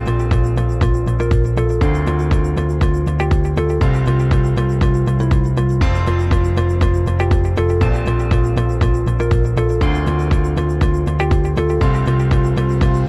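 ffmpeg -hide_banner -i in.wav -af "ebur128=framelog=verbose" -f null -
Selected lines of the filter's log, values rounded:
Integrated loudness:
  I:         -16.7 LUFS
  Threshold: -26.7 LUFS
Loudness range:
  LRA:         0.8 LU
  Threshold: -36.7 LUFS
  LRA low:   -17.0 LUFS
  LRA high:  -16.3 LUFS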